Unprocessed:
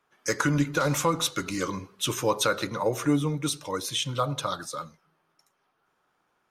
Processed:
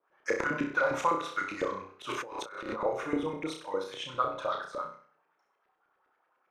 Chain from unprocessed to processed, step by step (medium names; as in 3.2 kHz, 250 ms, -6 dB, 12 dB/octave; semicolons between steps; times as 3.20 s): LFO band-pass saw up 9.9 Hz 390–2400 Hz; on a send: flutter echo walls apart 5.4 m, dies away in 0.46 s; 2.09–2.80 s: on the sum: compressor with a negative ratio -42 dBFS, ratio -1; trim +2.5 dB